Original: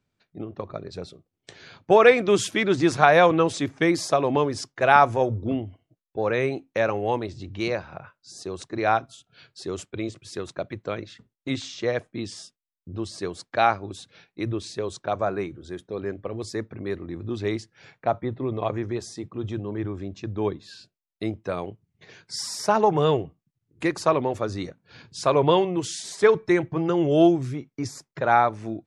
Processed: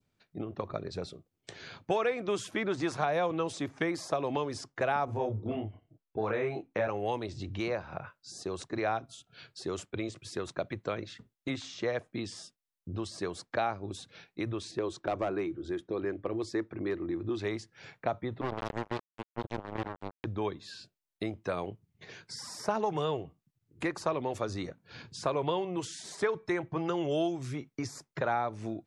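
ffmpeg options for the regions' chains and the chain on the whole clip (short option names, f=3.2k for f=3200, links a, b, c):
-filter_complex "[0:a]asettb=1/sr,asplit=3[a][b][c];[a]atrim=end=5.054[d];[b]atrim=start=5.05:end=6.88,asetpts=PTS-STARTPTS,afade=t=in:d=0.004:c=qsin,afade=t=out:st=1.826:d=0.004:c=qsin,lowpass=f=1.6k:p=1,bandreject=f=540:w=12,asplit=2[e][f];[f]adelay=28,volume=-2dB[g];[e][g]amix=inputs=2:normalize=0,atrim=end_sample=80703[h];[c]atrim=start=6.876[i];[d][h]acrossfade=d=0.004:c1=hsin:c2=qsin[j];[j][i]acrossfade=d=0.004:c1=qsin:c2=hsin,asettb=1/sr,asplit=3[k][l][m];[k]atrim=end=14.714[n];[l]atrim=start=14.71:end=17.39,asetpts=PTS-STARTPTS,afade=t=in:d=0.004:c=qsin,afade=t=out:st=2.676:d=0.004:c=qsin,aeval=exprs='clip(val(0),-1,0.119)':c=same,lowpass=f=3.1k:p=1,equalizer=f=330:w=4.2:g=11.5[o];[m]atrim=start=17.386[p];[n][o]acrossfade=d=0.004:c1=hsin:c2=qsin[q];[q][p]acrossfade=d=0.004:c1=qsin:c2=hsin,asettb=1/sr,asplit=3[r][s][t];[r]atrim=end=18.414[u];[s]atrim=start=18.41:end=20.25,asetpts=PTS-STARTPTS,afade=t=in:d=0.004:c=qsin,afade=t=out:st=1.836:d=0.004:c=qsin,acrossover=split=440|3000[v][w][x];[w]acompressor=threshold=-34dB:ratio=4:attack=3.2:release=140:knee=2.83:detection=peak[y];[v][y][x]amix=inputs=3:normalize=0,acrusher=bits=3:mix=0:aa=0.5[z];[t]atrim=start=20.246[aa];[u][z]acrossfade=d=0.004:c1=hsin:c2=qsin[ab];[ab][aa]acrossfade=d=0.004:c1=qsin:c2=hsin,adynamicequalizer=threshold=0.0112:dfrequency=1700:dqfactor=1.3:tfrequency=1700:tqfactor=1.3:attack=5:release=100:ratio=0.375:range=2.5:mode=cutabove:tftype=bell,acrossover=split=640|1700[ac][ad][ae];[ac]acompressor=threshold=-34dB:ratio=4[af];[ad]acompressor=threshold=-35dB:ratio=4[ag];[ae]acompressor=threshold=-44dB:ratio=4[ah];[af][ag][ah]amix=inputs=3:normalize=0"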